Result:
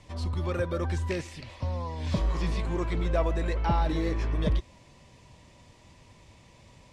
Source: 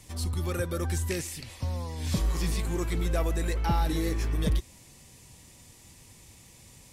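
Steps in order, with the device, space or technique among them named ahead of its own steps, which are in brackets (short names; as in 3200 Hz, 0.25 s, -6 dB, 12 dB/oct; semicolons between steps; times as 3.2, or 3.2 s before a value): inside a cardboard box (LPF 3900 Hz 12 dB/oct; small resonant body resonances 610/990 Hz, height 8 dB, ringing for 25 ms)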